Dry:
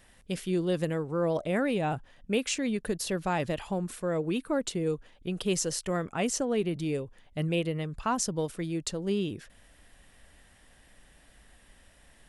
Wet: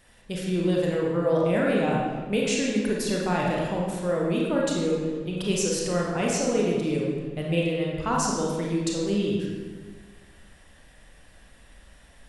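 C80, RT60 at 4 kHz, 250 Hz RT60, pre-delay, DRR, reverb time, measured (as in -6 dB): 2.0 dB, 1.0 s, 1.7 s, 27 ms, -3.0 dB, 1.5 s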